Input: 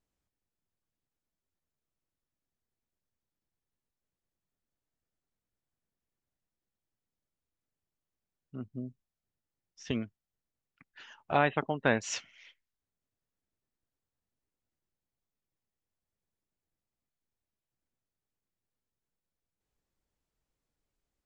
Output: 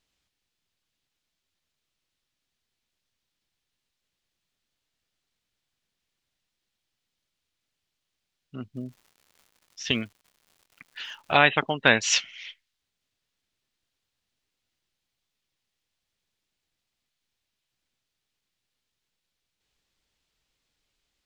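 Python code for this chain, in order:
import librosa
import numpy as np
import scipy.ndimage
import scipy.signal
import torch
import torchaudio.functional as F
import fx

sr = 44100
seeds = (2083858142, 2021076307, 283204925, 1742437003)

y = fx.peak_eq(x, sr, hz=3500.0, db=14.5, octaves=2.2)
y = fx.dmg_crackle(y, sr, seeds[0], per_s=210.0, level_db=-50.0, at=(8.74, 11.32), fade=0.02)
y = y * 10.0 ** (3.0 / 20.0)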